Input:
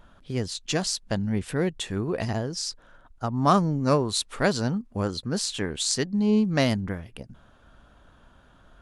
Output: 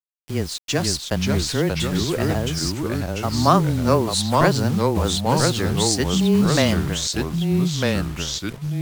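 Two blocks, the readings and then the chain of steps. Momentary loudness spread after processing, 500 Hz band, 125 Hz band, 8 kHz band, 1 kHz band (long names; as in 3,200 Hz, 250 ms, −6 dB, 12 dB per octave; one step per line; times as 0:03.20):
8 LU, +6.0 dB, +8.0 dB, +6.5 dB, +6.5 dB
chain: frequency shifter −17 Hz
bit reduction 7 bits
delay with pitch and tempo change per echo 446 ms, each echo −2 semitones, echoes 2
level +4 dB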